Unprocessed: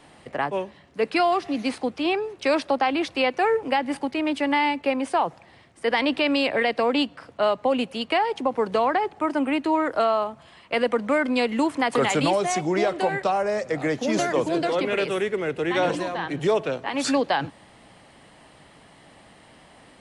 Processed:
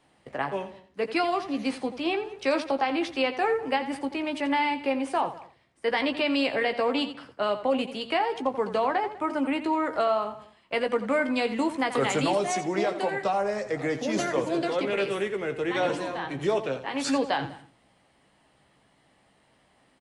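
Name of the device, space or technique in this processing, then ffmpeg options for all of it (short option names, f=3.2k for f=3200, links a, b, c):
slapback doubling: -filter_complex "[0:a]agate=range=-9dB:threshold=-45dB:ratio=16:detection=peak,asplit=3[a][b][c];[b]adelay=15,volume=-8dB[d];[c]adelay=86,volume=-12dB[e];[a][d][e]amix=inputs=3:normalize=0,asettb=1/sr,asplit=3[f][g][h];[f]atrim=end=12.514[i];[g]atrim=start=12.51:end=13.24,asetpts=PTS-STARTPTS,afade=t=in:d=0.004:c=qsin,afade=t=out:st=0.726:d=0.004:c=qsin,highpass=160[j];[h]atrim=start=13.236[k];[i][j]acrossfade=d=0.004:c1=hsin:c2=qsin[l];[l][k]acrossfade=d=0.004:c1=qsin:c2=hsin,asplit=2[m][n];[n]adelay=198.3,volume=-20dB,highshelf=f=4k:g=-4.46[o];[m][o]amix=inputs=2:normalize=0,volume=-4.5dB"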